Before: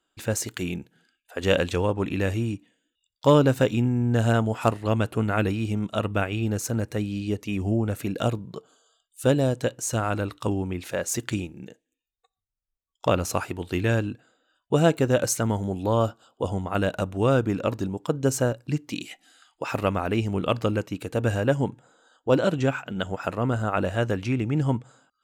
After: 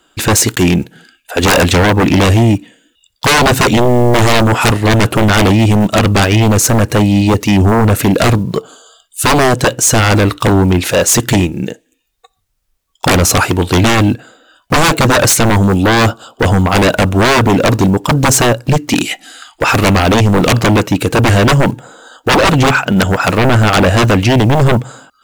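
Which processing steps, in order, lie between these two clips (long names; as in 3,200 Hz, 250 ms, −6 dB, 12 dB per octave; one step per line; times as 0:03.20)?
one scale factor per block 7 bits
sine wavefolder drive 17 dB, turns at −7 dBFS
level +1.5 dB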